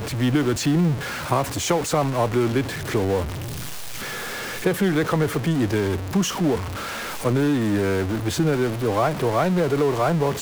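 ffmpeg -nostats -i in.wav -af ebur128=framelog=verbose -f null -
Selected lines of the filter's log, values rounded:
Integrated loudness:
  I:         -22.7 LUFS
  Threshold: -32.7 LUFS
Loudness range:
  LRA:         2.4 LU
  Threshold: -43.2 LUFS
  LRA low:   -24.3 LUFS
  LRA high:  -21.9 LUFS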